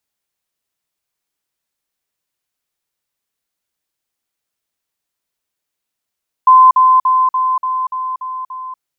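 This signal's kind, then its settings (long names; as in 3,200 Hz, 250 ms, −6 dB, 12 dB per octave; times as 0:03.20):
level staircase 1,030 Hz −3 dBFS, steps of −3 dB, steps 8, 0.24 s 0.05 s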